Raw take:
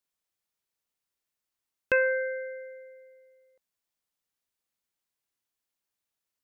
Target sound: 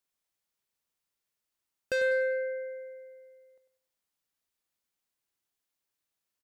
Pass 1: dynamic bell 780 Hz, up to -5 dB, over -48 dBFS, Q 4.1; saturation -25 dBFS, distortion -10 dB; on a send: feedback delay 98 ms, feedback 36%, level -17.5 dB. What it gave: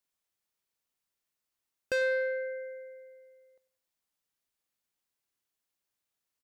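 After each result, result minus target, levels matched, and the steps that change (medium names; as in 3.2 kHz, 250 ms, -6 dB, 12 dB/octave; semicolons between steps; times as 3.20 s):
echo-to-direct -8.5 dB; 1 kHz band +5.0 dB
change: feedback delay 98 ms, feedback 36%, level -9 dB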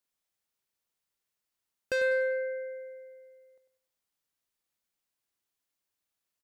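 1 kHz band +5.0 dB
change: dynamic bell 290 Hz, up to -5 dB, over -48 dBFS, Q 4.1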